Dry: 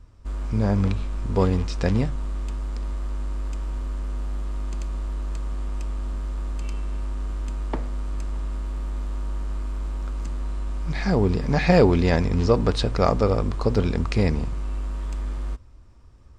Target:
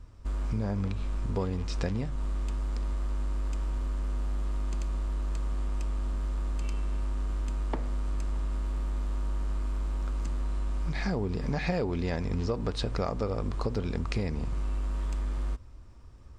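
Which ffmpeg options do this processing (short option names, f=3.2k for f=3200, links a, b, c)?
-af "acompressor=threshold=-27dB:ratio=6"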